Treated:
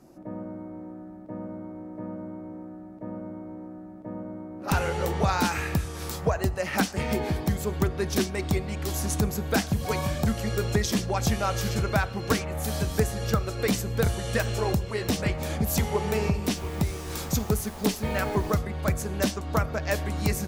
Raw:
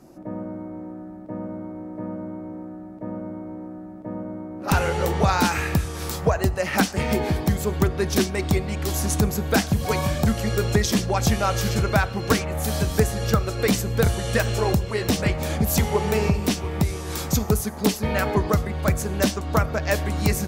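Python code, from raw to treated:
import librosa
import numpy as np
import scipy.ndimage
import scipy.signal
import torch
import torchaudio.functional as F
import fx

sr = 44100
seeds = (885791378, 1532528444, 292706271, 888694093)

y = fx.dmg_noise_colour(x, sr, seeds[0], colour='pink', level_db=-41.0, at=(16.54, 18.57), fade=0.02)
y = F.gain(torch.from_numpy(y), -4.5).numpy()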